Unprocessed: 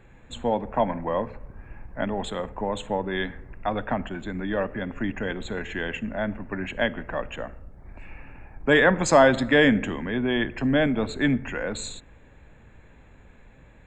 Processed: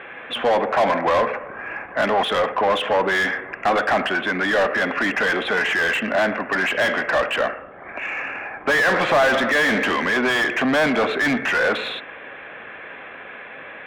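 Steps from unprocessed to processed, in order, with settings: elliptic low-pass 3.3 kHz, stop band 40 dB; tilt EQ +3 dB/octave; band-stop 900 Hz, Q 6.3; overdrive pedal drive 36 dB, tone 1 kHz, clips at -5 dBFS; bass shelf 230 Hz -10.5 dB; trim -1 dB

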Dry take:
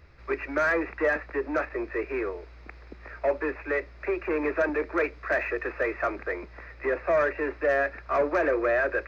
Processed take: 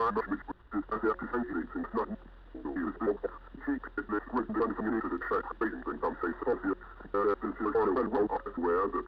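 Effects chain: slices played last to first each 102 ms, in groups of 7; de-hum 248 Hz, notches 3; pitch shift -5.5 st; trim -4 dB

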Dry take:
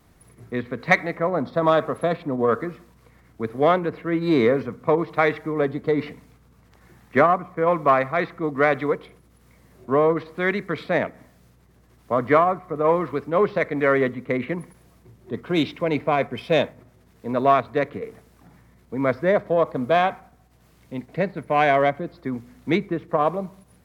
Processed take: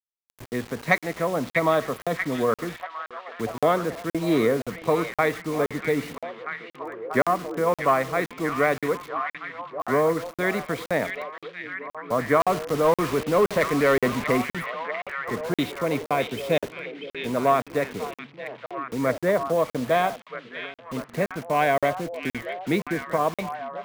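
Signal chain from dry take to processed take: in parallel at -2 dB: compression 6:1, threshold -32 dBFS, peak gain reduction 19 dB; on the sum: bit crusher 6-bit; 12.40–14.42 s: power-law waveshaper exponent 0.7; repeats whose band climbs or falls 640 ms, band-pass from 2.6 kHz, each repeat -0.7 oct, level -3 dB; crackling interface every 0.52 s, samples 2048, zero, from 0.46 s; trim -4 dB

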